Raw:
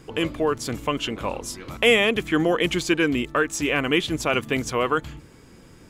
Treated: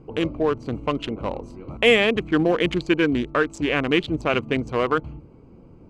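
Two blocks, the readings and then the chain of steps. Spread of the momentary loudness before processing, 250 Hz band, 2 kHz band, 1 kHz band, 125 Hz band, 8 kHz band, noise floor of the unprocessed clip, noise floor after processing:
9 LU, +1.5 dB, -0.5 dB, 0.0 dB, +2.0 dB, -13.0 dB, -49 dBFS, -48 dBFS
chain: Wiener smoothing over 25 samples; air absorption 58 m; gain +2 dB

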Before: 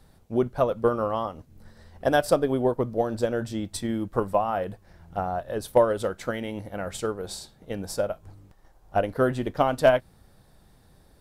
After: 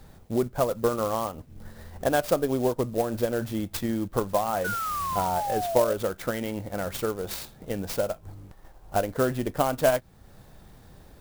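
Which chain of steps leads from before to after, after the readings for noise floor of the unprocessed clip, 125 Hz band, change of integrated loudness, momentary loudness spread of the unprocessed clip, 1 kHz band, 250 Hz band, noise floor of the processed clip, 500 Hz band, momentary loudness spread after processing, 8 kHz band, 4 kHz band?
-58 dBFS, 0.0 dB, -1.0 dB, 12 LU, 0.0 dB, -0.5 dB, -53 dBFS, -2.0 dB, 10 LU, +3.0 dB, +0.5 dB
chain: compressor 1.5:1, threshold -42 dBFS, peak gain reduction 10.5 dB; painted sound fall, 4.64–5.94, 570–1500 Hz -36 dBFS; clock jitter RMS 0.041 ms; gain +6.5 dB

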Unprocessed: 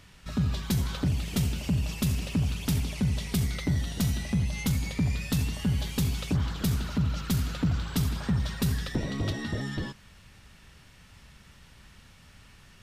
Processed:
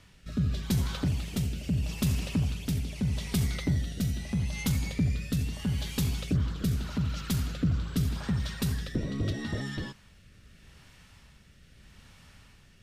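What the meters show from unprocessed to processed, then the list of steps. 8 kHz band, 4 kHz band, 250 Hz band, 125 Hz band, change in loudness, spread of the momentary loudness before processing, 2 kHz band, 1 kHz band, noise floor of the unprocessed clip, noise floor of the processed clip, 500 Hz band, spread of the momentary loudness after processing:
-2.5 dB, -2.5 dB, -1.5 dB, -1.5 dB, -1.5 dB, 3 LU, -2.5 dB, -4.0 dB, -54 dBFS, -57 dBFS, -2.0 dB, 4 LU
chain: rotary speaker horn 0.8 Hz

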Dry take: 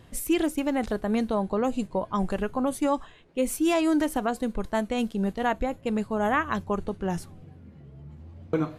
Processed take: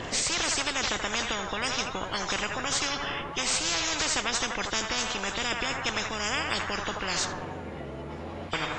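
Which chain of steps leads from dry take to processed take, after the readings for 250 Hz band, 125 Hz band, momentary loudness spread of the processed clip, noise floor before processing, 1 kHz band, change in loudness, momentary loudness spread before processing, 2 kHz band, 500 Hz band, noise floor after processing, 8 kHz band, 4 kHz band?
-12.5 dB, -4.0 dB, 10 LU, -51 dBFS, -1.5 dB, -1.0 dB, 8 LU, +6.0 dB, -7.5 dB, -38 dBFS, +11.0 dB, +13.5 dB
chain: nonlinear frequency compression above 2800 Hz 1.5:1; narrowing echo 81 ms, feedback 63%, band-pass 1100 Hz, level -11.5 dB; spectral compressor 10:1

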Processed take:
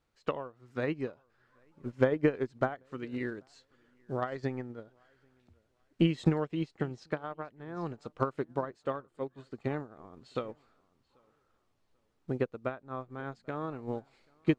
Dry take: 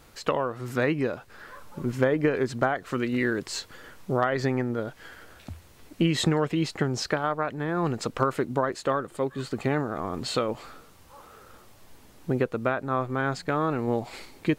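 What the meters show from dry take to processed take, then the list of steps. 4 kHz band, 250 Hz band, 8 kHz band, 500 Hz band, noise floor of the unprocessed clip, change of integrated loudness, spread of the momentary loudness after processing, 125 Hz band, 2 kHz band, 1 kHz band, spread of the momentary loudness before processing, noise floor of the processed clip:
-14.0 dB, -6.5 dB, under -20 dB, -7.0 dB, -53 dBFS, -7.5 dB, 13 LU, -6.5 dB, -11.0 dB, -10.5 dB, 17 LU, -75 dBFS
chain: air absorption 59 m; darkening echo 0.787 s, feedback 28%, low-pass 3900 Hz, level -18 dB; dynamic EQ 1700 Hz, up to -3 dB, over -39 dBFS, Q 0.9; upward expander 2.5:1, over -35 dBFS

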